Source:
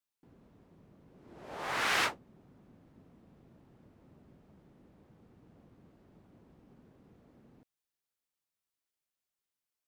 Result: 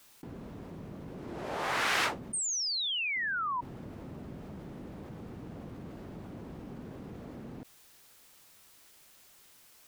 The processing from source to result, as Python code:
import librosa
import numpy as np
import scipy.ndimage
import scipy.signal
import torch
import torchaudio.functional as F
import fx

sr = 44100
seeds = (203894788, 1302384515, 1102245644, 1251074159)

y = fx.vowel_filter(x, sr, vowel='a', at=(2.39, 3.16))
y = fx.spec_paint(y, sr, seeds[0], shape='fall', start_s=2.33, length_s=1.28, low_hz=940.0, high_hz=9000.0, level_db=-37.0)
y = fx.env_flatten(y, sr, amount_pct=50)